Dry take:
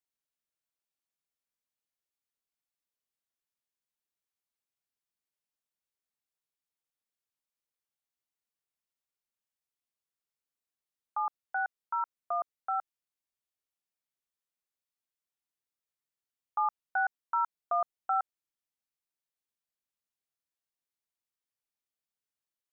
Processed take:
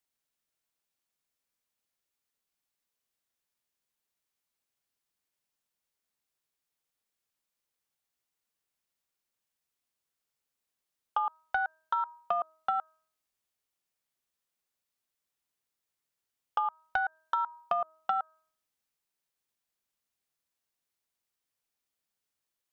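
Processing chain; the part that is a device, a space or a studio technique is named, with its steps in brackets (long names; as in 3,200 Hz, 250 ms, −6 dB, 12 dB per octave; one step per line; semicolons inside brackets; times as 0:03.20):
hum removal 317.1 Hz, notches 5
drum-bus smash (transient designer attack +6 dB, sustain +1 dB; downward compressor 16 to 1, threshold −30 dBFS, peak gain reduction 10 dB; soft clipping −22.5 dBFS, distortion −19 dB)
level +5.5 dB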